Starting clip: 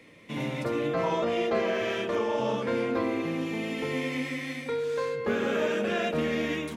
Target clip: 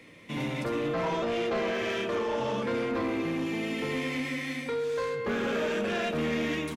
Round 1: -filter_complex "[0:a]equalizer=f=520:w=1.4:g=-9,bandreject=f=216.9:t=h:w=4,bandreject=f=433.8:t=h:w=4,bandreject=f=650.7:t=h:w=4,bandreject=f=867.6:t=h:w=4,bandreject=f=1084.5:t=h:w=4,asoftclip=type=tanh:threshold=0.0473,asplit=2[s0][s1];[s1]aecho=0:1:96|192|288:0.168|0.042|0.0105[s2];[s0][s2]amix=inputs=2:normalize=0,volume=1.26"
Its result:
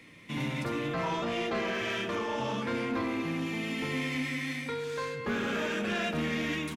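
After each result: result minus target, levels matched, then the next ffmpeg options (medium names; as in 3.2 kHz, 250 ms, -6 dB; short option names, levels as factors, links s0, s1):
echo 32 ms late; 500 Hz band -3.5 dB
-filter_complex "[0:a]equalizer=f=520:w=1.4:g=-9,bandreject=f=216.9:t=h:w=4,bandreject=f=433.8:t=h:w=4,bandreject=f=650.7:t=h:w=4,bandreject=f=867.6:t=h:w=4,bandreject=f=1084.5:t=h:w=4,asoftclip=type=tanh:threshold=0.0473,asplit=2[s0][s1];[s1]aecho=0:1:64|128|192:0.168|0.042|0.0105[s2];[s0][s2]amix=inputs=2:normalize=0,volume=1.26"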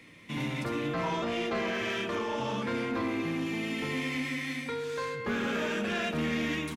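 500 Hz band -3.0 dB
-filter_complex "[0:a]equalizer=f=520:w=1.4:g=-2,bandreject=f=216.9:t=h:w=4,bandreject=f=433.8:t=h:w=4,bandreject=f=650.7:t=h:w=4,bandreject=f=867.6:t=h:w=4,bandreject=f=1084.5:t=h:w=4,asoftclip=type=tanh:threshold=0.0473,asplit=2[s0][s1];[s1]aecho=0:1:64|128|192:0.168|0.042|0.0105[s2];[s0][s2]amix=inputs=2:normalize=0,volume=1.26"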